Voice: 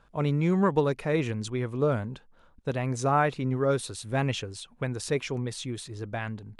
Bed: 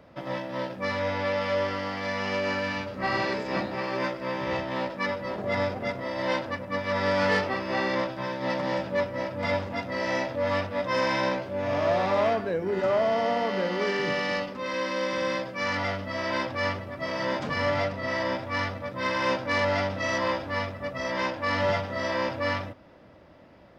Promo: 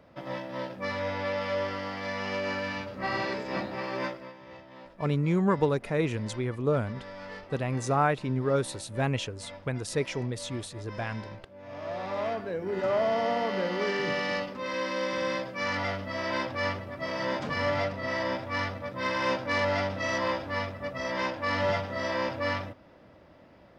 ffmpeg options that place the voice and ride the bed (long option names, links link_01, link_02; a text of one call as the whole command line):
ffmpeg -i stem1.wav -i stem2.wav -filter_complex "[0:a]adelay=4850,volume=-1dB[link_01];[1:a]volume=13dB,afade=type=out:start_time=4.06:duration=0.27:silence=0.177828,afade=type=in:start_time=11.59:duration=1.44:silence=0.149624[link_02];[link_01][link_02]amix=inputs=2:normalize=0" out.wav